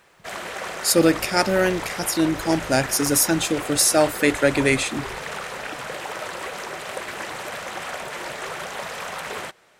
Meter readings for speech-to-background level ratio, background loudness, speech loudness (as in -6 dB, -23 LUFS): 11.5 dB, -31.5 LUFS, -20.0 LUFS